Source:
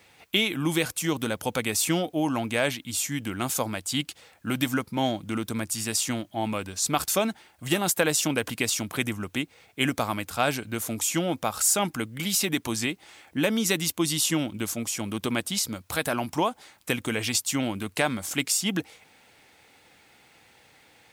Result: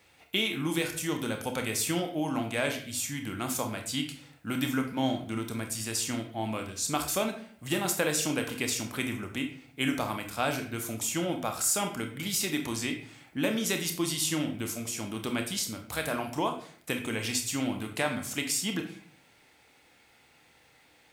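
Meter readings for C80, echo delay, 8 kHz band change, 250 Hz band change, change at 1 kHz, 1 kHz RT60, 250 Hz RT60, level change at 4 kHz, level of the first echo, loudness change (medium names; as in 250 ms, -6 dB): 12.0 dB, no echo, -4.5 dB, -3.5 dB, -4.5 dB, 0.50 s, 0.70 s, -4.0 dB, no echo, -4.0 dB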